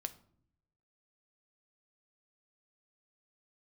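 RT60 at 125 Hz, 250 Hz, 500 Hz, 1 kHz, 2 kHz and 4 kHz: 1.2, 0.90, 0.70, 0.55, 0.40, 0.35 seconds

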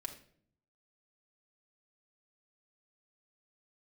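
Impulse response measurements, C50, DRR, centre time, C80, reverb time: 10.0 dB, 0.5 dB, 12 ms, 14.5 dB, 0.55 s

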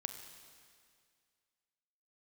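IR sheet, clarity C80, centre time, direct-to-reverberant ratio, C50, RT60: 8.5 dB, 31 ms, 7.0 dB, 7.5 dB, 2.1 s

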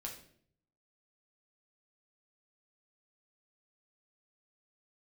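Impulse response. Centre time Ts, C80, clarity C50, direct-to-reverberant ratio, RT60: 23 ms, 11.5 dB, 7.5 dB, −0.5 dB, 0.60 s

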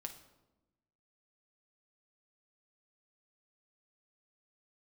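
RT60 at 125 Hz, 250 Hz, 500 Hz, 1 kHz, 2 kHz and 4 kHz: 1.4, 1.4, 1.1, 0.95, 0.70, 0.65 seconds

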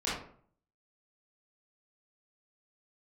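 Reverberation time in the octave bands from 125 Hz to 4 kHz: 0.70, 0.60, 0.55, 0.50, 0.45, 0.30 seconds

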